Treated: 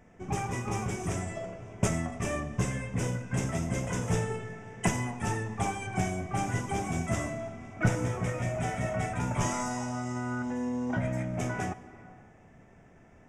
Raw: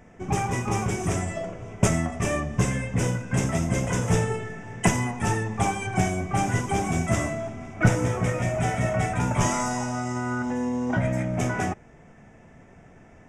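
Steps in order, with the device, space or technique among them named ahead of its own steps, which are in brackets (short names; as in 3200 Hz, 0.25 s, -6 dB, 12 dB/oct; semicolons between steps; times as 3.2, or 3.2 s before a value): compressed reverb return (on a send at -9 dB: reverb RT60 1.6 s, pre-delay 91 ms + compressor, threshold -29 dBFS, peak gain reduction 12.5 dB); on the sum: gain -6.5 dB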